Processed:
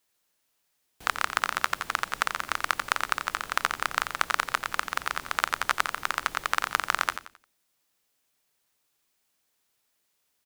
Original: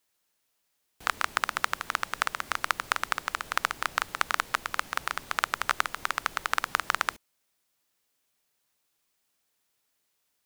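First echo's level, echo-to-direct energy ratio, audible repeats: -9.5 dB, -9.0 dB, 3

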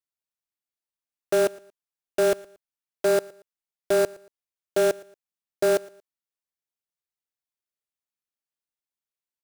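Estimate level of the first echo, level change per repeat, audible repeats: -22.5 dB, -10.5 dB, 2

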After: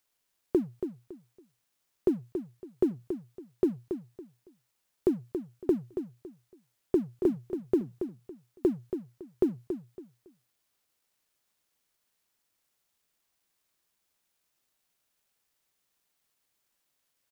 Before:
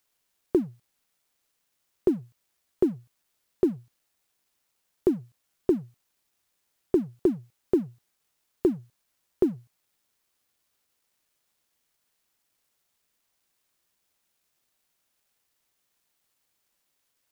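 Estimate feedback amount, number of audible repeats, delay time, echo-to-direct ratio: 25%, 3, 0.279 s, -8.0 dB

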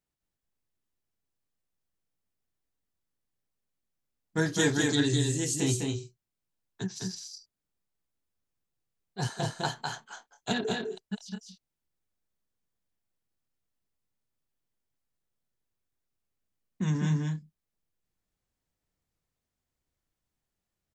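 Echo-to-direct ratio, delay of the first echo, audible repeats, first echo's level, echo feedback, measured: -2.5 dB, 0.205 s, 1, -3.5 dB, no steady repeat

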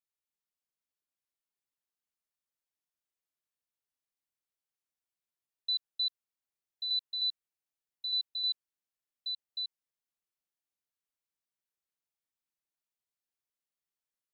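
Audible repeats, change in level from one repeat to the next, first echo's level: 1, no steady repeat, -5.0 dB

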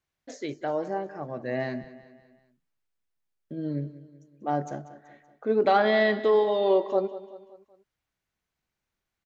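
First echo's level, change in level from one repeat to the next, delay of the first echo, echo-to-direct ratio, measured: -16.0 dB, -6.0 dB, 0.19 s, -15.0 dB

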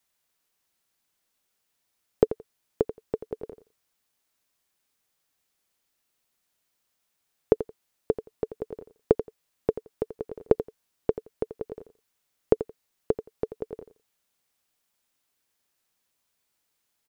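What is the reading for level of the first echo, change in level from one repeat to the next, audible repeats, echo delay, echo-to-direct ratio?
-12.5 dB, -16.0 dB, 2, 86 ms, -12.5 dB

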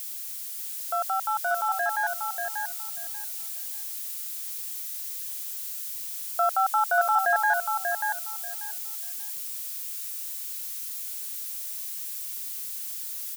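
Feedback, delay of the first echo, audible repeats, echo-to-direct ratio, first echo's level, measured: 19%, 0.588 s, 3, -5.0 dB, -5.0 dB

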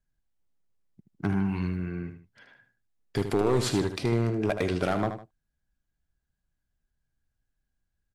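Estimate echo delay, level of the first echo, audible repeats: 77 ms, -9.0 dB, 2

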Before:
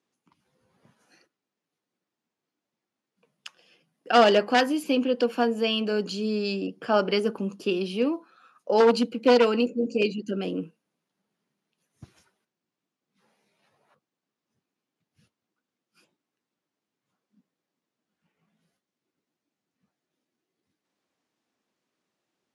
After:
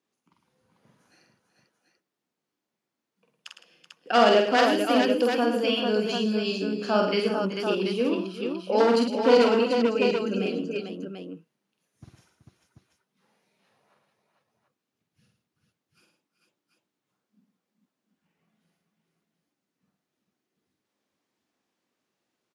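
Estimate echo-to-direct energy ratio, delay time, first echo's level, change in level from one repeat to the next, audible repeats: 1.0 dB, 47 ms, -3.5 dB, no steady repeat, 6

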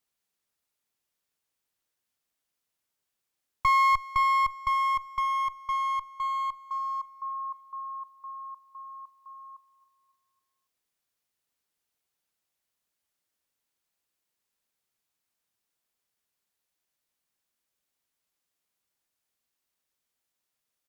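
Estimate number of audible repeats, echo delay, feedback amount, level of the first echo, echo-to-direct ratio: 3, 0.276 s, 50%, -20.5 dB, -19.5 dB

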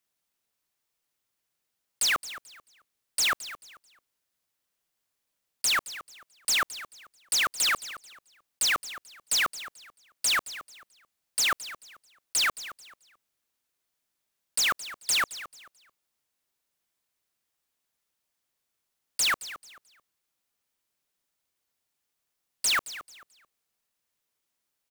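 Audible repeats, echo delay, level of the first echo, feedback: 2, 0.219 s, -15.0 dB, 27%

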